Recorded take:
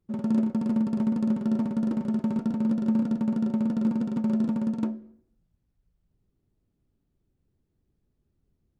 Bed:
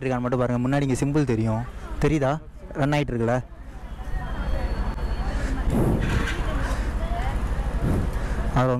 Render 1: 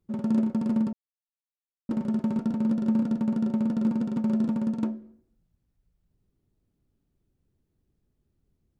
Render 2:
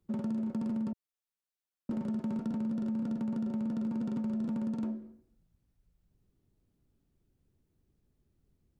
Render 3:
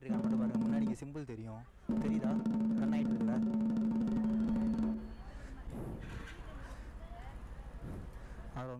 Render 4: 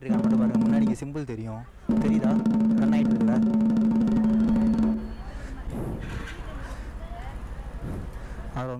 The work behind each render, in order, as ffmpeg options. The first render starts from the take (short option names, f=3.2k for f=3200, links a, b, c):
-filter_complex "[0:a]asplit=3[a][b][c];[a]atrim=end=0.93,asetpts=PTS-STARTPTS,afade=t=out:st=0.926:d=0.004:c=hsin[d];[b]atrim=start=0.93:end=1.89,asetpts=PTS-STARTPTS,volume=0[e];[c]atrim=start=1.89,asetpts=PTS-STARTPTS,afade=t=in:d=0.004:c=hsin[f];[d][e][f]concat=n=3:v=0:a=1"
-filter_complex "[0:a]acrossover=split=140[a][b];[b]alimiter=level_in=2dB:limit=-24dB:level=0:latency=1:release=23,volume=-2dB[c];[a][c]amix=inputs=2:normalize=0,acompressor=threshold=-31dB:ratio=6"
-filter_complex "[1:a]volume=-22dB[a];[0:a][a]amix=inputs=2:normalize=0"
-af "volume=11.5dB"